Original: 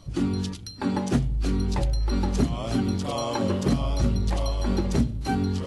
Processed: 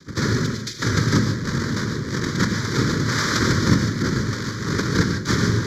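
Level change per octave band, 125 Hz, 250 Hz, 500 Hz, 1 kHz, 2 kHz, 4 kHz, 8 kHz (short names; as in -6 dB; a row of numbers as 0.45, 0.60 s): +5.5, +3.5, +3.0, +4.0, +16.0, +9.5, +11.0 dB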